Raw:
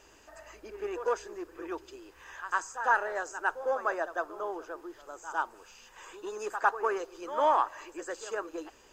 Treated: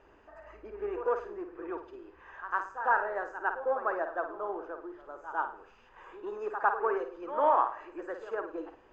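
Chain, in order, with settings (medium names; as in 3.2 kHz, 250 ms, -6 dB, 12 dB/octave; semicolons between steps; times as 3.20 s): low-pass 1.6 kHz 12 dB/octave; on a send: flutter echo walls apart 9.2 m, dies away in 0.39 s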